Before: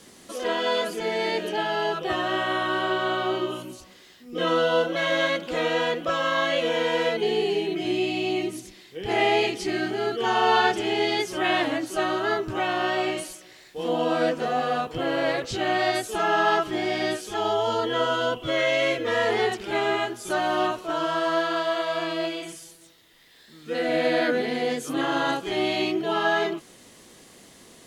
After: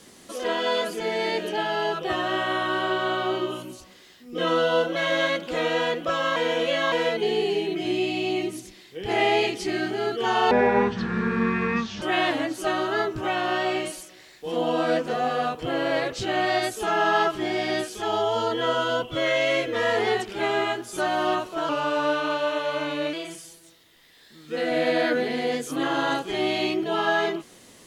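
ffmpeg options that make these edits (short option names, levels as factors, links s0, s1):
-filter_complex "[0:a]asplit=7[s0][s1][s2][s3][s4][s5][s6];[s0]atrim=end=6.362[s7];[s1]atrim=start=6.358:end=6.922,asetpts=PTS-STARTPTS,areverse[s8];[s2]atrim=start=6.918:end=10.514[s9];[s3]atrim=start=10.51:end=11.34,asetpts=PTS-STARTPTS,asetrate=24255,aresample=44100[s10];[s4]atrim=start=11.336:end=21.014[s11];[s5]atrim=start=21.01:end=22.31,asetpts=PTS-STARTPTS,asetrate=39690,aresample=44100[s12];[s6]atrim=start=22.306[s13];[s7][s8]acrossfade=d=0.004:c1=hsin:c2=hsin[s14];[s14][s9]acrossfade=d=0.004:c1=hsin:c2=hsin[s15];[s15][s10]acrossfade=d=0.004:c1=hsin:c2=hsin[s16];[s16][s11]acrossfade=d=0.004:c1=hsin:c2=hsin[s17];[s17][s12]acrossfade=d=0.004:c1=hsin:c2=hsin[s18];[s18][s13]acrossfade=d=0.004:c1=hsin:c2=hsin"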